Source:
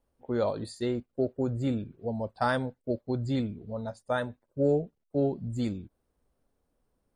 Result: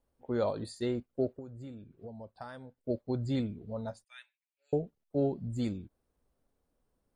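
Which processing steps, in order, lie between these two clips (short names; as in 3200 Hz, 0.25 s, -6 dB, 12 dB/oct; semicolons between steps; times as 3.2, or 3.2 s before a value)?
1.29–2.78 compressor 6:1, threshold -41 dBFS, peak gain reduction 17 dB; 4.04–4.73 ladder high-pass 2200 Hz, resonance 70%; gain -2.5 dB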